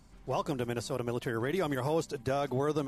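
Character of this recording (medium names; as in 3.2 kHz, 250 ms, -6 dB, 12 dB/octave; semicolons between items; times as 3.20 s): noise floor -55 dBFS; spectral tilt -5.5 dB/octave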